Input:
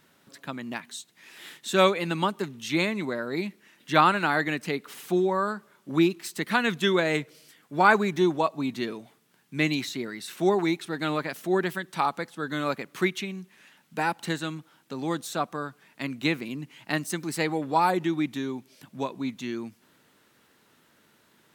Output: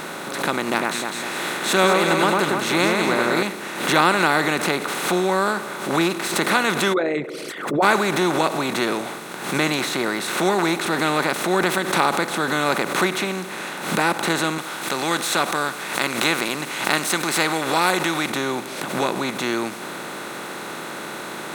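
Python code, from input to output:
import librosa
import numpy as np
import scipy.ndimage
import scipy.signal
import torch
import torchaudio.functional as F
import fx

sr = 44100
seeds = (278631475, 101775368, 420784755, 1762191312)

y = fx.echo_alternate(x, sr, ms=101, hz=2000.0, feedback_pct=56, wet_db=-3.5, at=(0.64, 3.43))
y = fx.envelope_sharpen(y, sr, power=3.0, at=(6.92, 7.82), fade=0.02)
y = fx.tilt_shelf(y, sr, db=-9.0, hz=1100.0, at=(14.58, 18.3))
y = fx.bin_compress(y, sr, power=0.4)
y = fx.pre_swell(y, sr, db_per_s=72.0)
y = F.gain(torch.from_numpy(y), -2.0).numpy()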